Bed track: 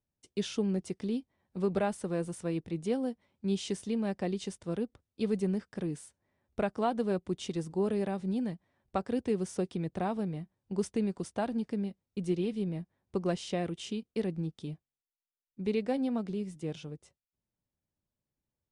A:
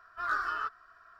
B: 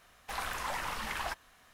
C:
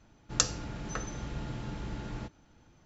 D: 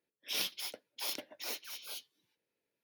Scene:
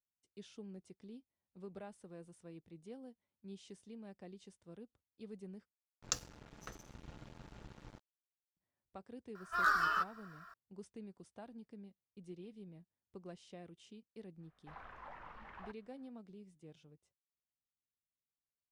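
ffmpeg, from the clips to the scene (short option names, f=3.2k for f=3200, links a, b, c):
-filter_complex "[0:a]volume=-19.5dB[a];[3:a]aeval=exprs='sgn(val(0))*max(abs(val(0))-0.0112,0)':c=same[b];[1:a]crystalizer=i=2:c=0[c];[2:a]lowpass=1.6k[d];[a]asplit=2[e][f];[e]atrim=end=5.724[g];[b]atrim=end=2.85,asetpts=PTS-STARTPTS,volume=-9.5dB[h];[f]atrim=start=8.566[i];[c]atrim=end=1.19,asetpts=PTS-STARTPTS,volume=-0.5dB,afade=t=in:d=0.004:c=hsin,afade=t=out:st=1.186:d=0.004:c=hsin,adelay=9350[j];[d]atrim=end=1.73,asetpts=PTS-STARTPTS,volume=-14dB,afade=t=in:d=0.05,afade=t=out:st=1.68:d=0.05,adelay=14380[k];[g][h]acrossfade=d=0.004:c1=hsin:c2=hsin[l];[l][i]acrossfade=d=0.004:c1=hsin:c2=hsin[m];[m][j][k]amix=inputs=3:normalize=0"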